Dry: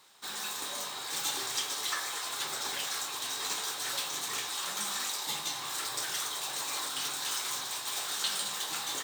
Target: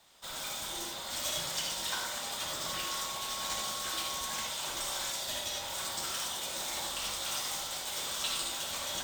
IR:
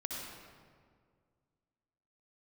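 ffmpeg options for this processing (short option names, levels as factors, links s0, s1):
-filter_complex "[0:a]afreqshift=-230[s0];[1:a]atrim=start_sample=2205,atrim=end_sample=4410[s1];[s0][s1]afir=irnorm=-1:irlink=0,asettb=1/sr,asplit=3[s2][s3][s4];[s2]atrim=end=2.664[s5];[s3]atrim=start=2.66:end=4.47,asetpts=PTS-STARTPTS,afade=t=in:d=0.004:c=qsin,afade=t=out:st=1.806:d=0.004:c=qsin,aeval=exprs='val(0)+0.00794*sin(2*PI*1100*n/s)':c=same[s6];[s4]atrim=start=4.466[s7];[s5][s6]acrossfade=d=0.004:c1=hsin:c2=qsin[s8];[s8][s7]acrossfade=d=0.004:c1=qsin:c2=hsin"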